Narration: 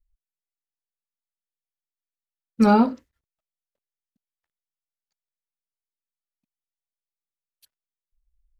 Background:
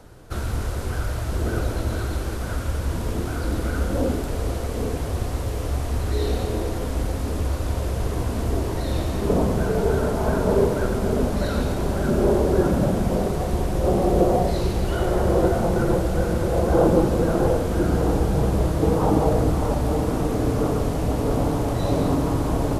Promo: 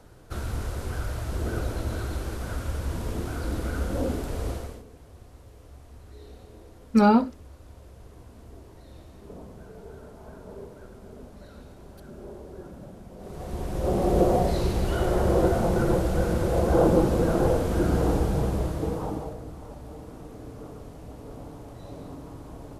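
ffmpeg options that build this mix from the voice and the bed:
ffmpeg -i stem1.wav -i stem2.wav -filter_complex "[0:a]adelay=4350,volume=-1.5dB[link_01];[1:a]volume=15.5dB,afade=type=out:start_time=4.5:duration=0.33:silence=0.125893,afade=type=in:start_time=13.17:duration=1.02:silence=0.0944061,afade=type=out:start_time=18.08:duration=1.29:silence=0.141254[link_02];[link_01][link_02]amix=inputs=2:normalize=0" out.wav

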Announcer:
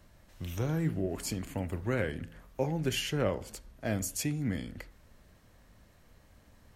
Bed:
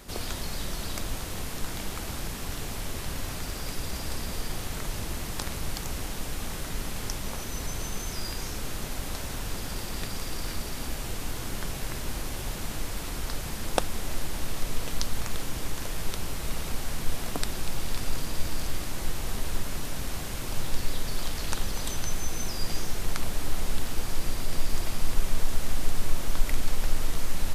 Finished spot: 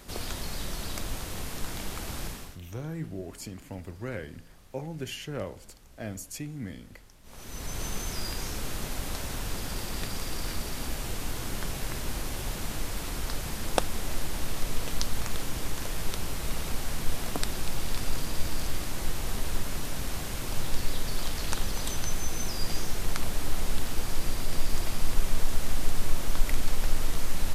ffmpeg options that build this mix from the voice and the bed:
ffmpeg -i stem1.wav -i stem2.wav -filter_complex "[0:a]adelay=2150,volume=-5dB[link_01];[1:a]volume=22dB,afade=type=out:start_time=2.25:duration=0.34:silence=0.0794328,afade=type=in:start_time=7.23:duration=0.63:silence=0.0668344[link_02];[link_01][link_02]amix=inputs=2:normalize=0" out.wav

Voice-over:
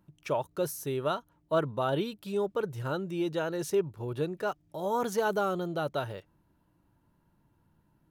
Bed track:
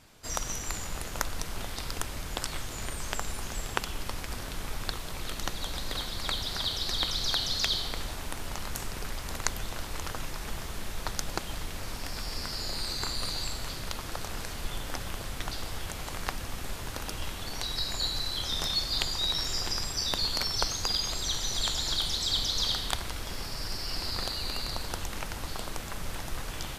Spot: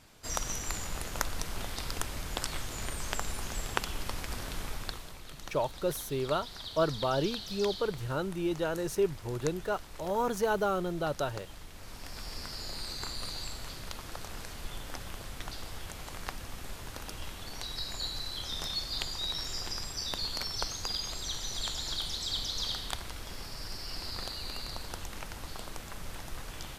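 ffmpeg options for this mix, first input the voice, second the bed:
ffmpeg -i stem1.wav -i stem2.wav -filter_complex "[0:a]adelay=5250,volume=-0.5dB[link_01];[1:a]volume=5dB,afade=type=out:start_time=4.58:duration=0.63:silence=0.298538,afade=type=in:start_time=11.73:duration=0.53:silence=0.501187[link_02];[link_01][link_02]amix=inputs=2:normalize=0" out.wav

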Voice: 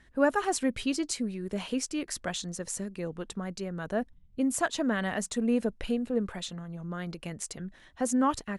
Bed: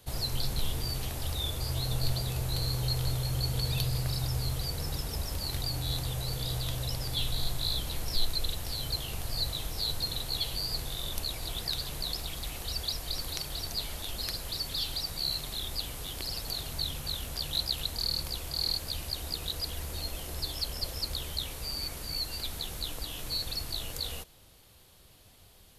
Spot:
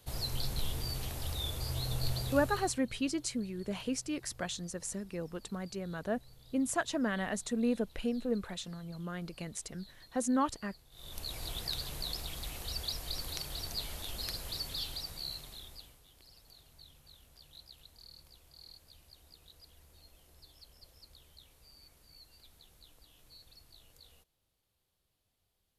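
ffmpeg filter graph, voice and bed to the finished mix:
ffmpeg -i stem1.wav -i stem2.wav -filter_complex "[0:a]adelay=2150,volume=-4dB[link_01];[1:a]volume=18dB,afade=type=out:start_time=2.26:duration=0.54:silence=0.0794328,afade=type=in:start_time=10.91:duration=0.49:silence=0.0794328,afade=type=out:start_time=14.55:duration=1.46:silence=0.105925[link_02];[link_01][link_02]amix=inputs=2:normalize=0" out.wav

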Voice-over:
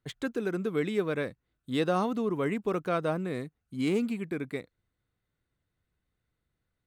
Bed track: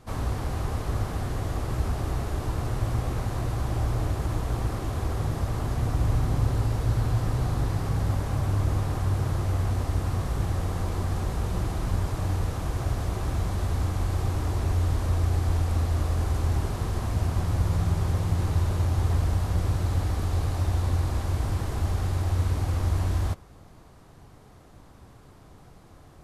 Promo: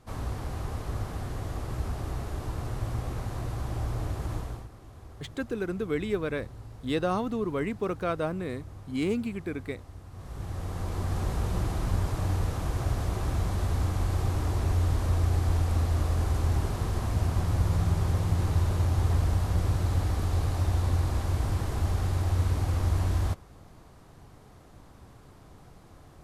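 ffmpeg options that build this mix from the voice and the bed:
ffmpeg -i stem1.wav -i stem2.wav -filter_complex "[0:a]adelay=5150,volume=-0.5dB[link_01];[1:a]volume=13dB,afade=type=out:start_time=4.36:duration=0.32:silence=0.199526,afade=type=in:start_time=10.11:duration=1.16:silence=0.125893[link_02];[link_01][link_02]amix=inputs=2:normalize=0" out.wav

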